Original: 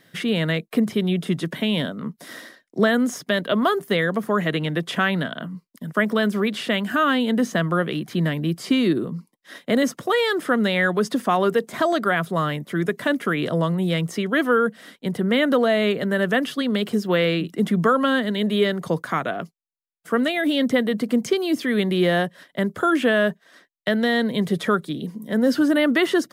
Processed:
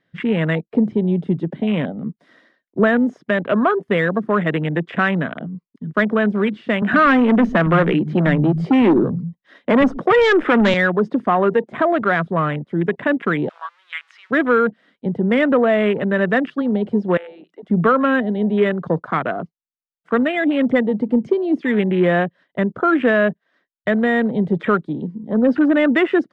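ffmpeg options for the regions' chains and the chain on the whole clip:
-filter_complex "[0:a]asettb=1/sr,asplit=3[s0][s1][s2];[s0]atrim=end=6.824[s3];[s1]atrim=start=6.82:end=10.74,asetpts=PTS-STARTPTS,afade=t=in:d=0.004:c=qsin,afade=t=out:st=3.916:d=0.004:c=qsin,acontrast=81,asoftclip=type=hard:threshold=0.237,acrossover=split=160[s4][s5];[s4]adelay=110[s6];[s6][s5]amix=inputs=2:normalize=0,atrim=end_sample=172872[s7];[s2]atrim=start=10.736[s8];[s3][s7]acrossfade=d=0.004:c1=hsin:c2=qsin[s9];[s9][s8]acrossfade=d=0.004:c1=qsin:c2=hsin,asettb=1/sr,asplit=3[s10][s11][s12];[s10]atrim=end=13.494[s13];[s11]atrim=start=13.49:end=14.31,asetpts=PTS-STARTPTS,afade=t=in:d=0.004:c=qsin,afade=t=out:st=0.816:d=0.004:c=qsin,aeval=exprs='val(0)+0.5*0.0422*sgn(val(0))':c=same,acrossover=split=5400[s14][s15];[s15]acompressor=threshold=0.0126:ratio=4:attack=1:release=60[s16];[s14][s16]amix=inputs=2:normalize=0,highpass=f=1200:w=0.5412,highpass=f=1200:w=1.3066[s17];[s12]atrim=start=14.306[s18];[s13][s17]acrossfade=d=0.004:c1=hsin:c2=qsin[s19];[s19][s18]acrossfade=d=0.004:c1=qsin:c2=hsin,asettb=1/sr,asplit=3[s20][s21][s22];[s20]atrim=end=17.174[s23];[s21]atrim=start=17.17:end=17.7,asetpts=PTS-STARTPTS,afade=t=in:d=0.004:c=qsin,afade=t=out:st=0.526:d=0.004:c=qsin,highpass=530,acompressor=threshold=0.0126:ratio=3:attack=3.2:release=140:knee=1:detection=peak[s24];[s22]atrim=start=17.696[s25];[s23][s24]acrossfade=d=0.004:c1=hsin:c2=qsin[s26];[s26][s25]acrossfade=d=0.004:c1=qsin:c2=hsin,lowpass=3000,afwtdn=0.0316,acontrast=22,volume=0.891"

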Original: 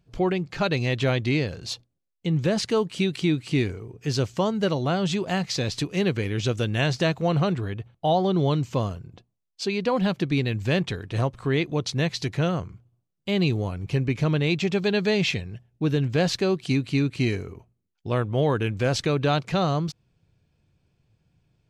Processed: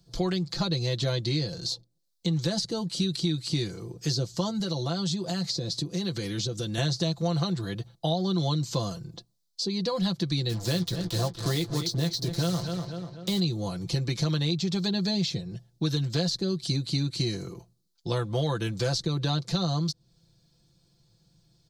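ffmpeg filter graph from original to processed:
-filter_complex "[0:a]asettb=1/sr,asplit=3[s0][s1][s2];[s0]atrim=end=4.594[s3];[s1]atrim=start=4.59:end=6.78,asetpts=PTS-STARTPTS,afade=t=in:d=0.004:c=qsin,afade=t=out:st=2.186:d=0.004:c=qsin,acompressor=threshold=0.0447:ratio=4:attack=3.2:release=140:knee=1:detection=peak,highpass=53[s4];[s2]atrim=start=6.776[s5];[s3][s4]acrossfade=d=0.004:c1=hsin:c2=qsin[s6];[s6][s5]acrossfade=d=0.004:c1=qsin:c2=hsin,asettb=1/sr,asplit=3[s7][s8][s9];[s7]atrim=end=10.494[s10];[s8]atrim=start=10.49:end=13.4,asetpts=PTS-STARTPTS,afade=t=in:d=0.004:c=qsin,afade=t=out:st=2.906:d=0.004:c=qsin,acrusher=bits=5:mix=0:aa=0.5,asplit=2[s11][s12];[s12]adelay=17,volume=0.266[s13];[s11][s13]amix=inputs=2:normalize=0,atrim=end_sample=128331,asplit=2[s14][s15];[s15]adelay=246,lowpass=f=3900:p=1,volume=0.282,asplit=2[s16][s17];[s17]adelay=246,lowpass=f=3900:p=1,volume=0.48,asplit=2[s18][s19];[s19]adelay=246,lowpass=f=3900:p=1,volume=0.48,asplit=2[s20][s21];[s21]adelay=246,lowpass=f=3900:p=1,volume=0.48,asplit=2[s22][s23];[s23]adelay=246,lowpass=f=3900:p=1,volume=0.48[s24];[s14][s16][s18][s20][s22][s24]amix=inputs=6:normalize=0,atrim=end_sample=128331[s25];[s9]atrim=start=13.396[s26];[s10][s25]acrossfade=d=0.004:c1=hsin:c2=qsin[s27];[s27][s26]acrossfade=d=0.004:c1=qsin:c2=hsin,highshelf=f=3300:t=q:w=3:g=8.5,aecho=1:1:5.9:0.76,acrossover=split=170|700[s28][s29][s30];[s28]acompressor=threshold=0.0316:ratio=4[s31];[s29]acompressor=threshold=0.0251:ratio=4[s32];[s30]acompressor=threshold=0.0224:ratio=4[s33];[s31][s32][s33]amix=inputs=3:normalize=0"

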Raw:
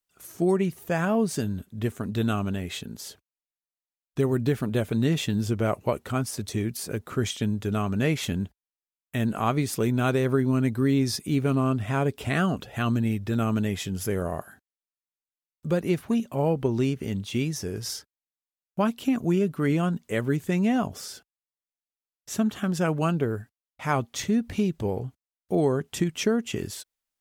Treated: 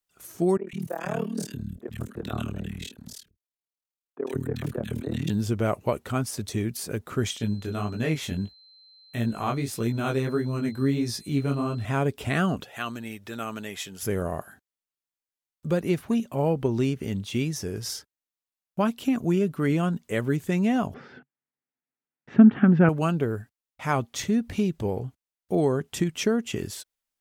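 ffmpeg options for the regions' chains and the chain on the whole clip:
-filter_complex "[0:a]asettb=1/sr,asplit=3[s0][s1][s2];[s0]atrim=end=0.574[s3];[s1]atrim=start=0.57:end=5.3,asetpts=PTS-STARTPTS,afade=t=in:d=0.004:c=qsin,afade=t=out:st=4.726:d=0.004:c=qsin,tremolo=f=38:d=0.974,acrossover=split=280|1500[s4][s5][s6];[s6]adelay=100[s7];[s4]adelay=160[s8];[s8][s5][s7]amix=inputs=3:normalize=0,atrim=end_sample=208593[s9];[s2]atrim=start=5.296[s10];[s3][s9]acrossfade=d=0.004:c1=hsin:c2=qsin[s11];[s11][s10]acrossfade=d=0.004:c1=qsin:c2=hsin,asettb=1/sr,asplit=3[s12][s13][s14];[s12]atrim=end=7.384[s15];[s13]atrim=start=7.38:end=11.85,asetpts=PTS-STARTPTS,afade=t=in:d=0.004:c=qsin,afade=t=out:st=4.466:d=0.004:c=qsin,flanger=delay=17:depth=5.4:speed=1.6,aeval=exprs='val(0)+0.00251*sin(2*PI*4100*n/s)':c=same[s16];[s14]atrim=start=11.846[s17];[s15][s16]acrossfade=d=0.004:c1=hsin:c2=qsin[s18];[s18][s17]acrossfade=d=0.004:c1=qsin:c2=hsin,asettb=1/sr,asplit=3[s19][s20][s21];[s19]atrim=end=12.644[s22];[s20]atrim=start=12.64:end=14.03,asetpts=PTS-STARTPTS,afade=t=in:d=0.004:c=qsin,afade=t=out:st=1.386:d=0.004:c=qsin,highpass=f=830:p=1,acompressor=mode=upward:threshold=0.00631:ratio=2.5:attack=3.2:release=140:knee=2.83:detection=peak,bandreject=f=4900:w=26[s23];[s21]atrim=start=14.026[s24];[s22][s23]acrossfade=d=0.004:c1=hsin:c2=qsin[s25];[s25][s24]acrossfade=d=0.004:c1=qsin:c2=hsin,asettb=1/sr,asplit=3[s26][s27][s28];[s26]atrim=end=20.944[s29];[s27]atrim=start=20.94:end=22.89,asetpts=PTS-STARTPTS,afade=t=in:d=0.004:c=qsin,afade=t=out:st=1.946:d=0.004:c=qsin,acontrast=77,highpass=120,equalizer=f=140:t=q:w=4:g=8,equalizer=f=250:t=q:w=4:g=9,equalizer=f=610:t=q:w=4:g=-6,equalizer=f=1100:t=q:w=4:g=-6,lowpass=f=2100:w=0.5412,lowpass=f=2100:w=1.3066[s30];[s28]atrim=start=22.886[s31];[s29][s30]acrossfade=d=0.004:c1=hsin:c2=qsin[s32];[s32][s31]acrossfade=d=0.004:c1=qsin:c2=hsin"

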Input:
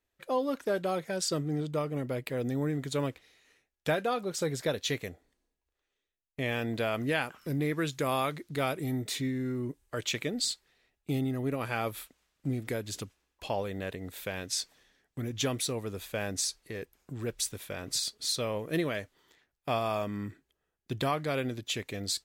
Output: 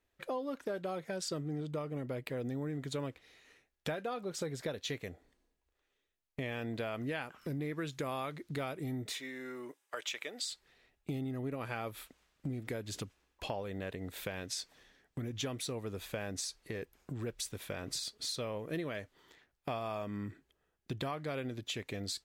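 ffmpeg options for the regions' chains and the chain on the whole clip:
-filter_complex "[0:a]asettb=1/sr,asplit=3[s0][s1][s2];[s0]atrim=end=9.124[s3];[s1]atrim=start=9.12:end=10.52,asetpts=PTS-STARTPTS,afade=t=in:d=0.004:c=qsin,afade=t=out:st=1.396:d=0.004:c=qsin,highpass=680,bandreject=f=4300:w=14[s4];[s2]atrim=start=10.516[s5];[s3][s4]acrossfade=d=0.004:c1=hsin:c2=qsin[s6];[s6][s5]acrossfade=d=0.004:c1=qsin:c2=hsin,highshelf=f=5000:g=-6,acompressor=threshold=0.00794:ratio=3,volume=1.5"

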